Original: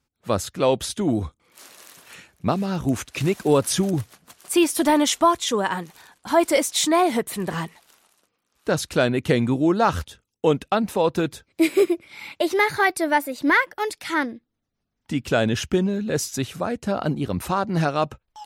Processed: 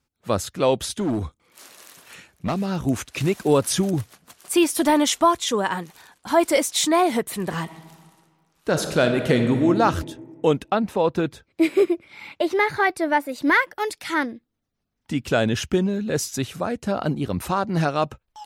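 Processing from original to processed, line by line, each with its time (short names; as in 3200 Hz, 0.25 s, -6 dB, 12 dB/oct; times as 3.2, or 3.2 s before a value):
0.88–2.58 hard clip -19.5 dBFS
7.62–9.69 reverb throw, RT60 1.7 s, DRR 5.5 dB
10.64–13.29 high shelf 4800 Hz -10.5 dB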